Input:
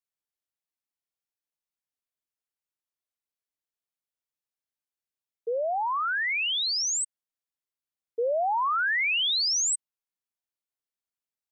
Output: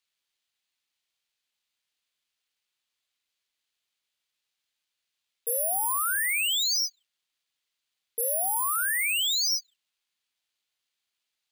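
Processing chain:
bad sample-rate conversion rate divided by 4×, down filtered, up zero stuff
parametric band 3,400 Hz +15 dB 2.3 octaves
brickwall limiter −21.5 dBFS, peak gain reduction 18.5 dB
level +2 dB

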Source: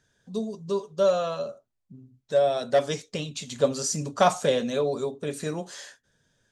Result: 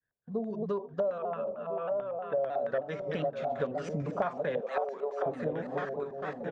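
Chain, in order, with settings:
feedback delay that plays each chunk backwards 503 ms, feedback 55%, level −7 dB
0:04.61–0:05.26: Butterworth high-pass 400 Hz 36 dB per octave
auto-filter low-pass square 4.5 Hz 750–1,700 Hz
0:01.18–0:02.38: Chebyshev low-pass with heavy ripple 3,600 Hz, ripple 6 dB
downward compressor 6 to 1, threshold −29 dBFS, peak gain reduction 17 dB
echo with shifted repeats 489 ms, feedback 48%, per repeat +37 Hz, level −23.5 dB
downward expander −53 dBFS
pitch modulation by a square or saw wave saw down 3.2 Hz, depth 100 cents

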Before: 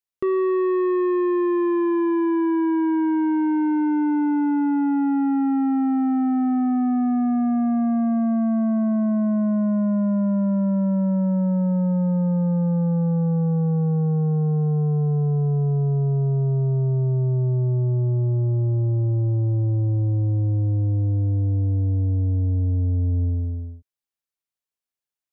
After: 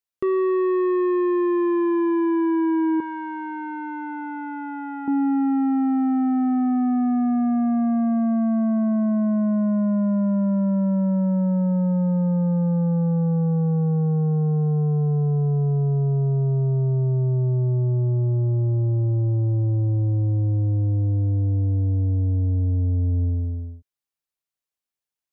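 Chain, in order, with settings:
0:03.00–0:05.08: low shelf with overshoot 750 Hz −11.5 dB, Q 1.5

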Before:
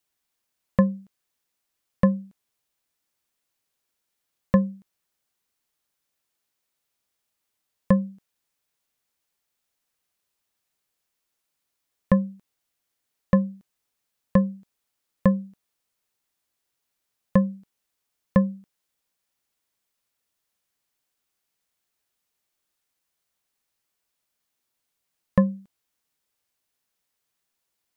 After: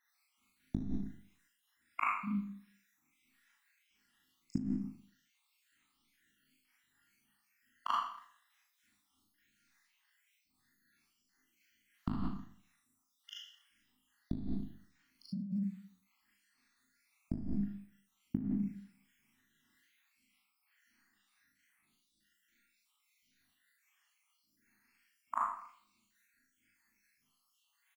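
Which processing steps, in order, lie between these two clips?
time-frequency cells dropped at random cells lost 80%
gate with flip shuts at −23 dBFS, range −37 dB
Chebyshev band-stop filter 280–970 Hz, order 2
high-shelf EQ 2,000 Hz −9.5 dB
double-tracking delay 20 ms −8.5 dB
pitch vibrato 3.1 Hz 43 cents
in parallel at −1 dB: brickwall limiter −26.5 dBFS, peak gain reduction 8 dB
on the sum: octave-band graphic EQ 125/250/500/1,000/2,000 Hz −4/+4/+5/−8/+11 dB
on a send: backwards echo 39 ms −4.5 dB
on the sum: four-comb reverb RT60 0.58 s, combs from 27 ms, DRR −5 dB
compressor whose output falls as the input rises −35 dBFS, ratio −1

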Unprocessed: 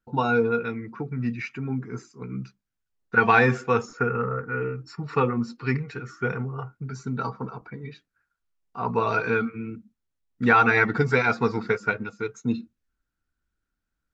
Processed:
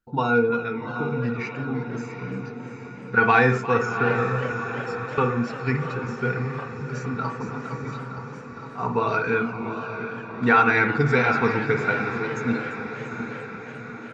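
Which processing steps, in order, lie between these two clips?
0:04.52–0:05.18: first difference
feedback delay with all-pass diffusion 758 ms, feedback 58%, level −9 dB
convolution reverb, pre-delay 42 ms, DRR 8 dB
0:06.57–0:07.49: delay throw 460 ms, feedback 70%, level −7.5 dB
feedback echo with a swinging delay time 347 ms, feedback 66%, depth 141 cents, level −16 dB

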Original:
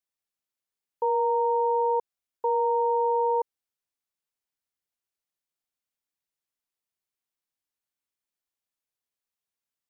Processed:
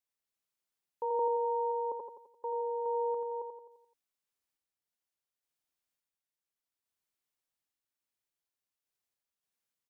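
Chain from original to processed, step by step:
0:01.19–0:01.92: high-pass filter 510 Hz 12 dB per octave
brickwall limiter −24.5 dBFS, peak gain reduction 6.5 dB
sample-and-hold tremolo 3.5 Hz, depth 55%
repeating echo 86 ms, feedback 50%, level −5.5 dB

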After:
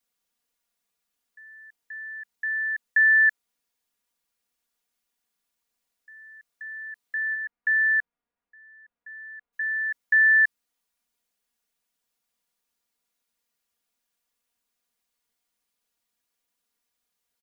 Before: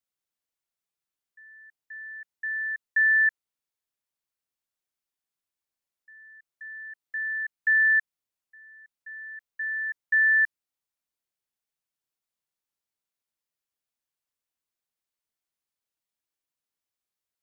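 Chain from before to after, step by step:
0:07.33–0:09.52: low-pass filter 1,600 Hz → 1,600 Hz 12 dB per octave
comb filter 4.2 ms, depth 91%
level +6 dB

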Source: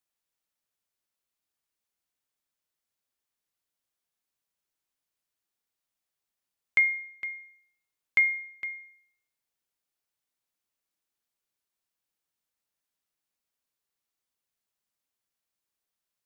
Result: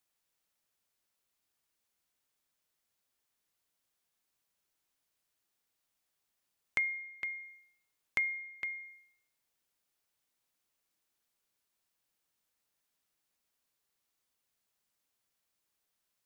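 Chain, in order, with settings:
downward compressor 2 to 1, threshold −45 dBFS, peak gain reduction 14 dB
level +4 dB

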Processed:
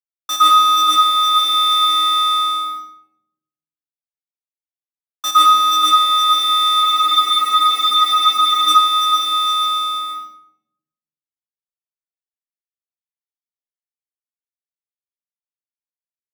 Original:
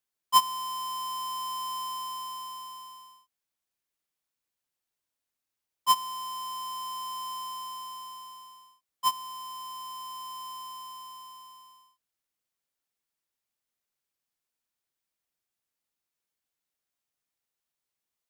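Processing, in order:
high-pass filter 65 Hz 12 dB per octave
repeating echo 523 ms, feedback 28%, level −6.5 dB
dead-zone distortion −48 dBFS
speed change +12%
leveller curve on the samples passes 5
low-shelf EQ 120 Hz −7 dB
frequency shifter +100 Hz
high-shelf EQ 2,800 Hz −7 dB
convolution reverb RT60 0.80 s, pre-delay 108 ms, DRR −5 dB
speech leveller within 4 dB 2 s
frozen spectrum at 0:06.84, 1.84 s

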